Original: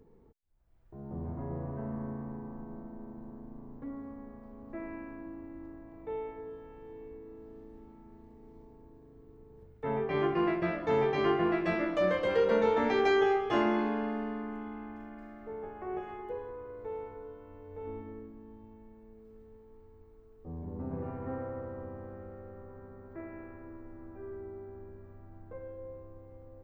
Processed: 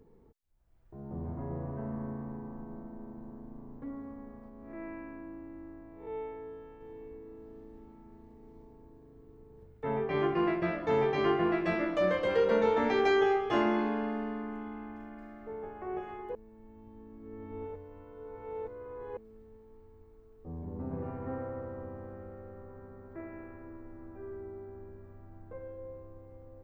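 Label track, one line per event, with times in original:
4.490000	6.810000	spectral blur width 143 ms
16.350000	19.170000	reverse

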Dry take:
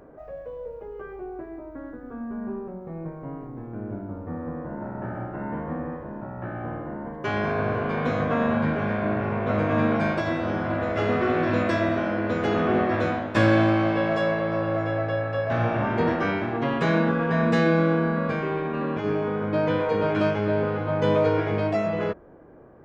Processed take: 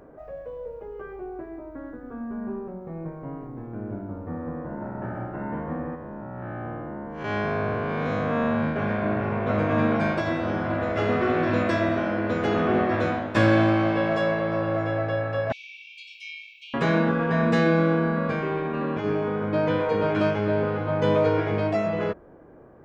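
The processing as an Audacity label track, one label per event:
5.950000	8.760000	spectral blur width 136 ms
15.520000	16.740000	brick-wall FIR high-pass 2.2 kHz

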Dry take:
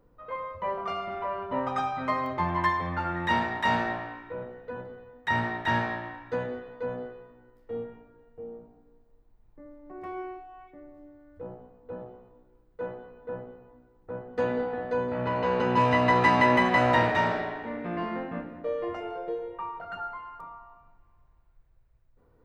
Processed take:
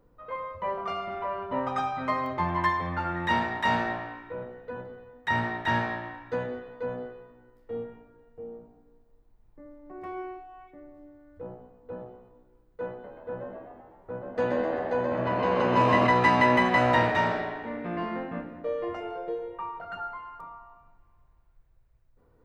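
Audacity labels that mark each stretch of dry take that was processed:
12.910000	16.070000	frequency-shifting echo 128 ms, feedback 55%, per repeat +76 Hz, level -5 dB

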